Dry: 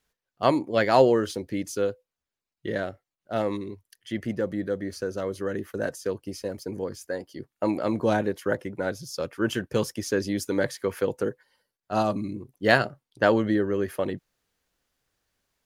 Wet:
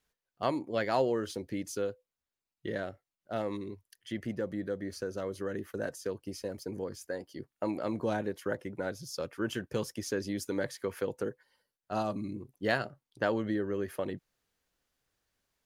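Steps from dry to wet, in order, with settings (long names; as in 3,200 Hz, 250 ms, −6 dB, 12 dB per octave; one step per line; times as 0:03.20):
downward compressor 1.5 to 1, threshold −31 dBFS, peak gain reduction 7 dB
level −4 dB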